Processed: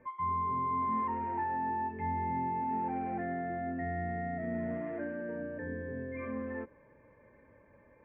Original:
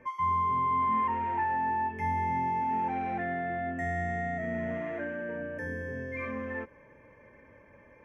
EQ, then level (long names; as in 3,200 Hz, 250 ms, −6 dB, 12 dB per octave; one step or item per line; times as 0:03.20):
Gaussian smoothing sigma 3.3 samples
dynamic equaliser 300 Hz, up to +5 dB, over −47 dBFS, Q 0.98
high-frequency loss of the air 99 metres
−4.0 dB